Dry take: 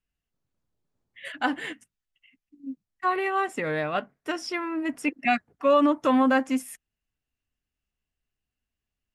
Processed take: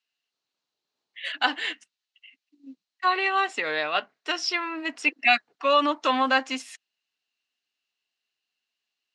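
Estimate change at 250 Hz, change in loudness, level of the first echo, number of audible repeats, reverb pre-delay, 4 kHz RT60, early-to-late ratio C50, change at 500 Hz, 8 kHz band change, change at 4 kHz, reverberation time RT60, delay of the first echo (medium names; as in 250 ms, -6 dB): -8.0 dB, +1.0 dB, no echo, no echo, no reverb, no reverb, no reverb, -3.0 dB, +2.0 dB, +10.5 dB, no reverb, no echo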